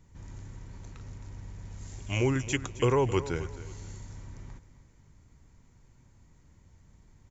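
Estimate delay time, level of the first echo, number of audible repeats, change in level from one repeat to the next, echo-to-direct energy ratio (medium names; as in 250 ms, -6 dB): 265 ms, -15.0 dB, 2, -10.0 dB, -14.5 dB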